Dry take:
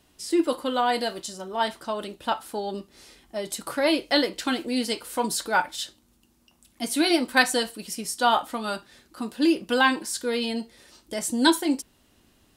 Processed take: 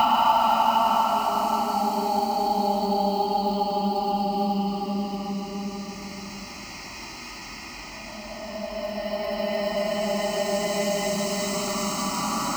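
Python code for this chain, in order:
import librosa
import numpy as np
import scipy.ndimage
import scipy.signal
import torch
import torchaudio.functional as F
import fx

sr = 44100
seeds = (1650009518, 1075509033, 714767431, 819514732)

p1 = fx.paulstretch(x, sr, seeds[0], factor=9.6, window_s=0.5, from_s=2.32)
p2 = fx.sample_hold(p1, sr, seeds[1], rate_hz=14000.0, jitter_pct=20)
p3 = p1 + F.gain(torch.from_numpy(p2), -7.5).numpy()
p4 = fx.fixed_phaser(p3, sr, hz=2400.0, stages=8)
p5 = fx.echo_wet_bandpass(p4, sr, ms=153, feedback_pct=71, hz=820.0, wet_db=-7)
p6 = fx.band_squash(p5, sr, depth_pct=40)
y = F.gain(torch.from_numpy(p6), 8.5).numpy()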